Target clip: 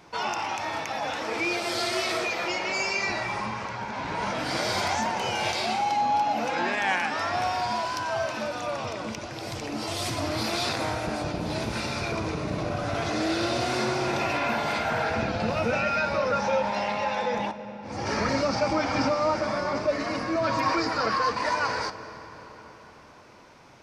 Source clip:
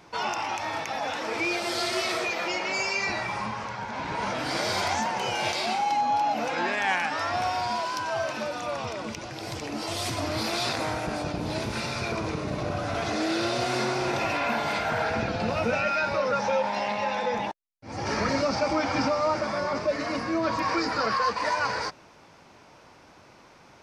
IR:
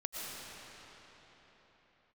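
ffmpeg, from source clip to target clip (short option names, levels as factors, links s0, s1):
-filter_complex "[0:a]asettb=1/sr,asplit=3[s0][s1][s2];[s0]atrim=end=20.354[s3];[s1]atrim=start=20.35:end=20.75,asetpts=PTS-STARTPTS,afade=t=in:d=0.004:c=qsin,afade=t=out:st=0.396:d=0.004:c=qsin,aecho=1:1:7.5:0.68,atrim=end_sample=17640[s4];[s2]atrim=start=20.746[s5];[s3][s4]acrossfade=d=0.004:c1=hsin:c2=qsin[s6];[s6][s5]acrossfade=d=0.004:c1=qsin:c2=hsin,asplit=2[s7][s8];[s8]lowshelf=f=320:g=10[s9];[1:a]atrim=start_sample=2205,adelay=59[s10];[s9][s10]afir=irnorm=-1:irlink=0,volume=0.158[s11];[s7][s11]amix=inputs=2:normalize=0"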